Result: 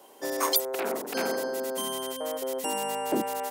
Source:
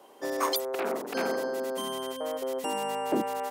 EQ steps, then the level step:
high-shelf EQ 5,200 Hz +9.5 dB
notch filter 1,200 Hz, Q 18
0.0 dB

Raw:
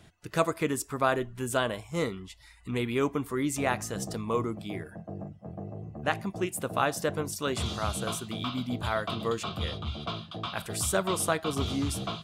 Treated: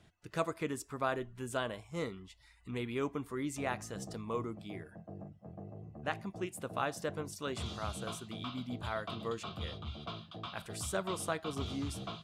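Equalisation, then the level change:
high-shelf EQ 12,000 Hz −11 dB
−8.0 dB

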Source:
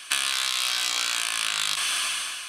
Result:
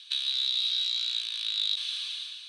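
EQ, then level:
resonant band-pass 3,800 Hz, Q 15
+7.0 dB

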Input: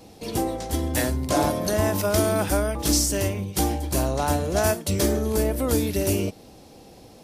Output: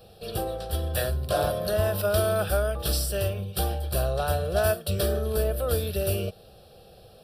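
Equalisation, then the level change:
phaser with its sweep stopped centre 1,400 Hz, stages 8
0.0 dB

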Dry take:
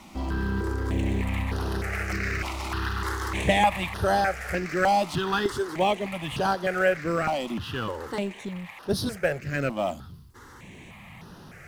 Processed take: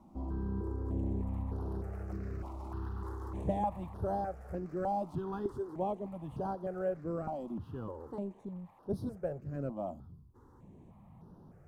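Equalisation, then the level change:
drawn EQ curve 280 Hz 0 dB, 990 Hz −5 dB, 2,100 Hz −28 dB, 13,000 Hz −17 dB
−8.0 dB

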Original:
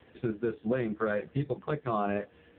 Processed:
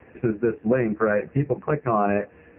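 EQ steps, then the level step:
Chebyshev low-pass filter 2,600 Hz, order 6
+9.0 dB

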